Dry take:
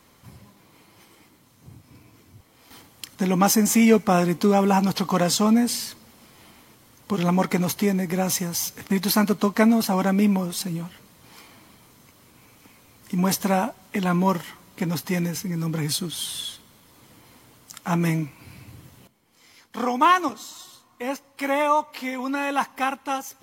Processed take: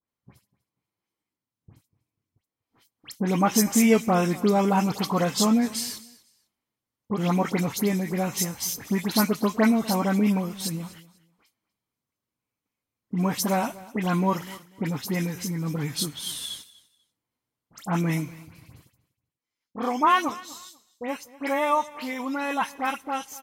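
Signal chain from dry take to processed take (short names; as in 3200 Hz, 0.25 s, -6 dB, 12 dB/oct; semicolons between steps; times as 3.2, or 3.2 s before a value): gate -43 dBFS, range -32 dB; dispersion highs, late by 81 ms, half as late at 2400 Hz; on a send: feedback echo 0.245 s, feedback 22%, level -20 dB; on the sum: gain -2.5 dB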